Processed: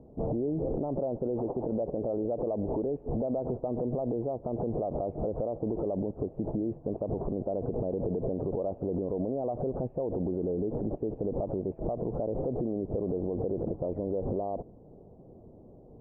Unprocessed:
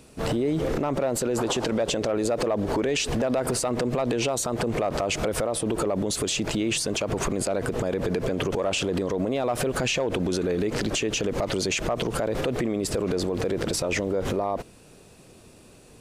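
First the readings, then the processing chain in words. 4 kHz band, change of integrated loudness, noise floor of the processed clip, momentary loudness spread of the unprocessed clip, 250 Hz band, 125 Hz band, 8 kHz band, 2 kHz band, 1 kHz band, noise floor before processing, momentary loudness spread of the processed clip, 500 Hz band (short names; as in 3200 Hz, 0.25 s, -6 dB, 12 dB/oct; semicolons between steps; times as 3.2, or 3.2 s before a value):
under -40 dB, -6.5 dB, -52 dBFS, 2 LU, -5.0 dB, -4.5 dB, under -40 dB, under -40 dB, -9.0 dB, -51 dBFS, 2 LU, -5.0 dB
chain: compressor, threshold -27 dBFS, peak gain reduction 6.5 dB; steep low-pass 790 Hz 36 dB/oct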